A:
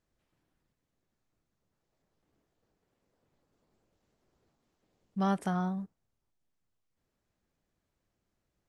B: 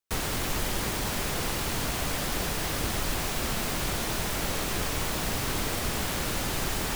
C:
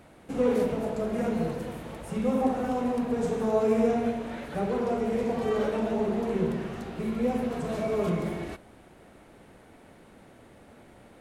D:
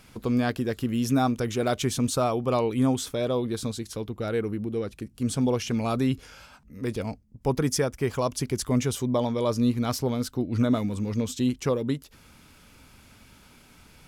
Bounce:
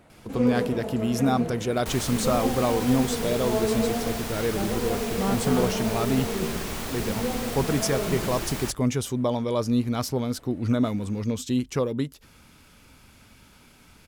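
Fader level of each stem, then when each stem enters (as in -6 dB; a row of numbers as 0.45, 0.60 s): +1.0, -3.5, -2.0, 0.0 dB; 0.00, 1.75, 0.00, 0.10 s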